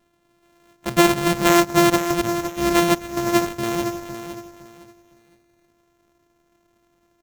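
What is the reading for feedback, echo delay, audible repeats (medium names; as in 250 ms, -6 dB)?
26%, 511 ms, 3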